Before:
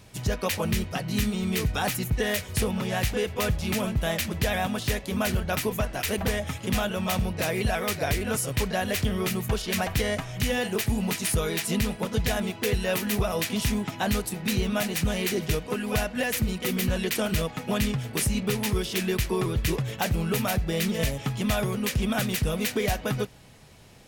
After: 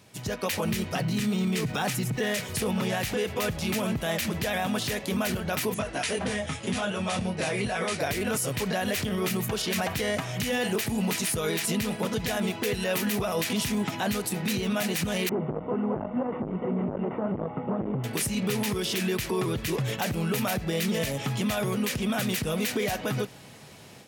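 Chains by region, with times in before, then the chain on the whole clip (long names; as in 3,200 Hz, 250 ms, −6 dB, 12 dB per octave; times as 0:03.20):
0:00.97–0:02.46: low shelf with overshoot 100 Hz −8 dB, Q 3 + linearly interpolated sample-rate reduction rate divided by 2×
0:05.74–0:08.00: linear-phase brick-wall low-pass 11,000 Hz + micro pitch shift up and down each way 14 cents
0:15.29–0:18.04: linear delta modulator 16 kbit/s, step −36.5 dBFS + Savitzky-Golay smoothing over 65 samples + saturating transformer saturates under 430 Hz
whole clip: automatic gain control gain up to 8 dB; brickwall limiter −16.5 dBFS; high-pass filter 130 Hz 12 dB per octave; level −2.5 dB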